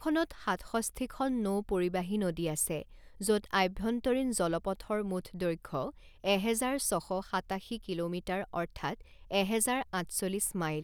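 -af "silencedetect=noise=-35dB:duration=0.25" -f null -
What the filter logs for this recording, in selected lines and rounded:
silence_start: 2.82
silence_end: 3.21 | silence_duration: 0.39
silence_start: 5.89
silence_end: 6.24 | silence_duration: 0.35
silence_start: 8.94
silence_end: 9.31 | silence_duration: 0.37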